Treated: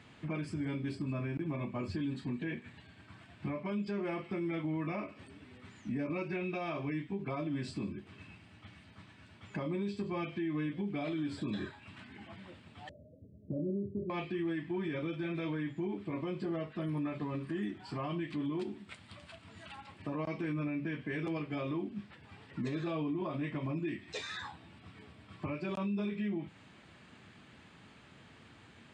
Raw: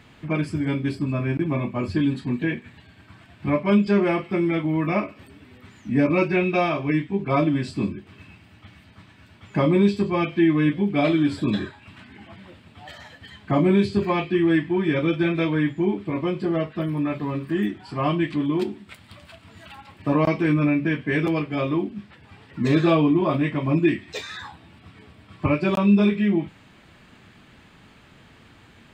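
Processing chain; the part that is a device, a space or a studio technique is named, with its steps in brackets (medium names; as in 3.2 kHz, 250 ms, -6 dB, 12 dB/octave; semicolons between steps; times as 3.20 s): 12.89–14.10 s: Chebyshev low-pass 640 Hz, order 10; podcast mastering chain (high-pass 73 Hz; compression 2.5:1, threshold -27 dBFS, peak gain reduction 9.5 dB; peak limiter -22.5 dBFS, peak gain reduction 7 dB; trim -5.5 dB; MP3 128 kbps 22.05 kHz)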